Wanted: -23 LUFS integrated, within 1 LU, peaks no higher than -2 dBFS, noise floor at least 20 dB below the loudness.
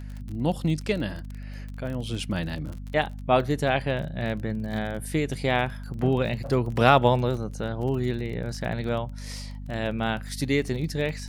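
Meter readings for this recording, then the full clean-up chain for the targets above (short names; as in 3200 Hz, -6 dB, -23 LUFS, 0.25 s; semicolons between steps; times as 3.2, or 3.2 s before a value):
ticks 31/s; hum 50 Hz; harmonics up to 250 Hz; hum level -34 dBFS; loudness -27.0 LUFS; peak -3.5 dBFS; loudness target -23.0 LUFS
-> de-click; de-hum 50 Hz, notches 5; gain +4 dB; limiter -2 dBFS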